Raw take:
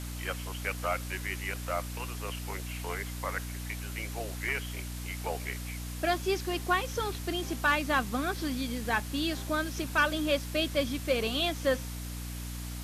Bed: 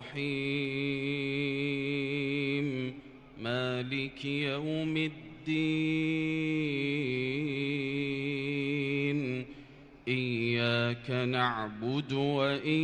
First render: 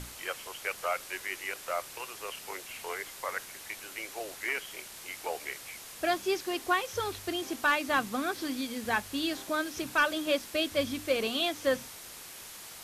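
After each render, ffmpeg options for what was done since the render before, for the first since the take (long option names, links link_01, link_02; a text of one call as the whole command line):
ffmpeg -i in.wav -af "bandreject=frequency=60:width_type=h:width=6,bandreject=frequency=120:width_type=h:width=6,bandreject=frequency=180:width_type=h:width=6,bandreject=frequency=240:width_type=h:width=6,bandreject=frequency=300:width_type=h:width=6" out.wav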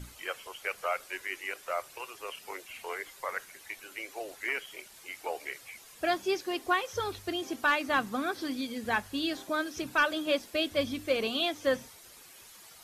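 ffmpeg -i in.wav -af "afftdn=noise_reduction=10:noise_floor=-47" out.wav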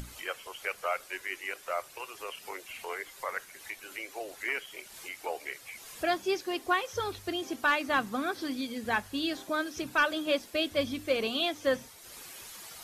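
ffmpeg -i in.wav -af "acompressor=mode=upward:threshold=-38dB:ratio=2.5" out.wav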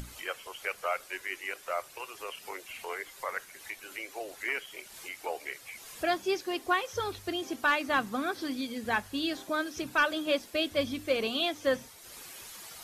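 ffmpeg -i in.wav -af anull out.wav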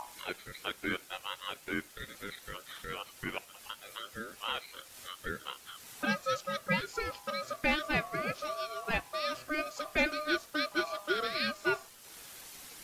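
ffmpeg -i in.wav -af "acrusher=bits=10:mix=0:aa=0.000001,aeval=exprs='val(0)*sin(2*PI*910*n/s)':channel_layout=same" out.wav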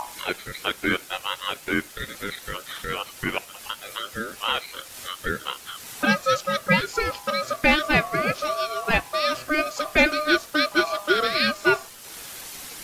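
ffmpeg -i in.wav -af "volume=11dB" out.wav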